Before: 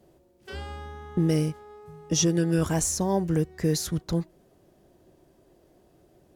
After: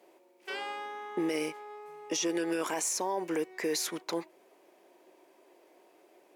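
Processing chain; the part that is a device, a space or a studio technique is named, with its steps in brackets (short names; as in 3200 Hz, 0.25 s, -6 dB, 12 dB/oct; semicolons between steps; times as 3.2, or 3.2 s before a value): laptop speaker (HPF 330 Hz 24 dB/oct; bell 950 Hz +7.5 dB 0.45 oct; bell 2300 Hz +11 dB 0.54 oct; limiter -22.5 dBFS, peak gain reduction 11 dB)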